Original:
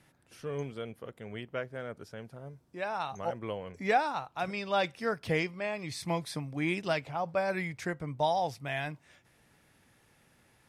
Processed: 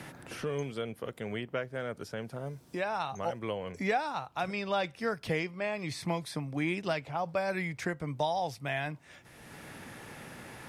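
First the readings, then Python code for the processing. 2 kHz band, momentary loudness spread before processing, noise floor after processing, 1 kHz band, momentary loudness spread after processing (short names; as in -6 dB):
0.0 dB, 14 LU, -57 dBFS, -1.5 dB, 15 LU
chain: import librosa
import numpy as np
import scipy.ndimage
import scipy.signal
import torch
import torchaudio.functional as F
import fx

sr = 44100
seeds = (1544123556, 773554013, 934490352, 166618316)

y = fx.band_squash(x, sr, depth_pct=70)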